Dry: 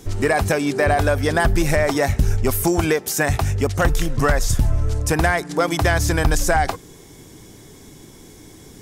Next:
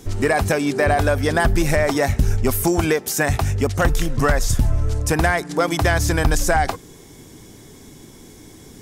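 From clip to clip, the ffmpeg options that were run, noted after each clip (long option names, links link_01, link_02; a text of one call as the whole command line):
ffmpeg -i in.wav -af "equalizer=frequency=240:width=6.8:gain=3.5" out.wav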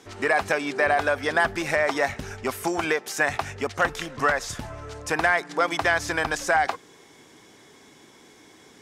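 ffmpeg -i in.wav -af "bandpass=frequency=1600:width_type=q:width=0.57:csg=0" out.wav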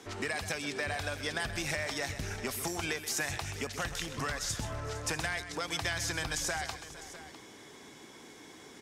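ffmpeg -i in.wav -filter_complex "[0:a]acrossover=split=160|3000[link_01][link_02][link_03];[link_02]acompressor=threshold=-37dB:ratio=6[link_04];[link_01][link_04][link_03]amix=inputs=3:normalize=0,asplit=2[link_05][link_06];[link_06]aecho=0:1:129|459|653:0.251|0.141|0.168[link_07];[link_05][link_07]amix=inputs=2:normalize=0,acontrast=86,volume=-7.5dB" out.wav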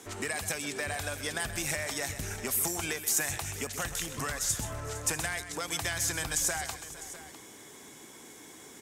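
ffmpeg -i in.wav -af "aexciter=amount=3.8:drive=3.6:freq=6800" out.wav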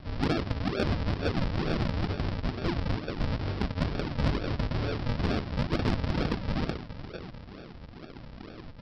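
ffmpeg -i in.wav -af "aresample=11025,acrusher=samples=21:mix=1:aa=0.000001:lfo=1:lforange=21:lforate=2.2,aresample=44100,asoftclip=type=tanh:threshold=-24dB,volume=8dB" out.wav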